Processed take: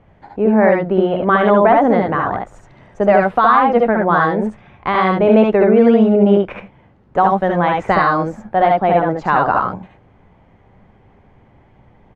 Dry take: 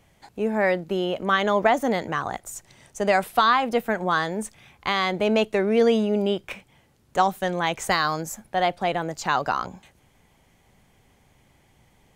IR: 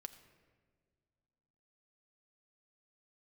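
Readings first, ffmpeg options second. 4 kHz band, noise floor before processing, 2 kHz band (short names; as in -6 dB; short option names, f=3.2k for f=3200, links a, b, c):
-4.5 dB, -61 dBFS, +5.5 dB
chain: -af "lowpass=1.4k,aecho=1:1:64|74:0.447|0.708,alimiter=level_in=10dB:limit=-1dB:release=50:level=0:latency=1,volume=-1dB"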